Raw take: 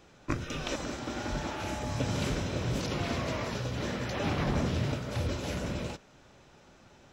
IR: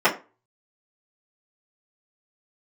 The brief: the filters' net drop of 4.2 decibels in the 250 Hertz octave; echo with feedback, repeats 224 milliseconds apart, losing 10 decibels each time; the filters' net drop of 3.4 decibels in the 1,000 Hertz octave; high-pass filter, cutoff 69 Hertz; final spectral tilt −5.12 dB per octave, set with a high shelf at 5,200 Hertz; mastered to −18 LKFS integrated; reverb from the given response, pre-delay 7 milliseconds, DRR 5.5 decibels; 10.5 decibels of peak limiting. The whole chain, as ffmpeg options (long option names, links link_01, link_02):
-filter_complex "[0:a]highpass=69,equalizer=frequency=250:width_type=o:gain=-5.5,equalizer=frequency=1000:width_type=o:gain=-4,highshelf=frequency=5200:gain=-4.5,alimiter=level_in=6dB:limit=-24dB:level=0:latency=1,volume=-6dB,aecho=1:1:224|448|672|896:0.316|0.101|0.0324|0.0104,asplit=2[link_01][link_02];[1:a]atrim=start_sample=2205,adelay=7[link_03];[link_02][link_03]afir=irnorm=-1:irlink=0,volume=-25.5dB[link_04];[link_01][link_04]amix=inputs=2:normalize=0,volume=20dB"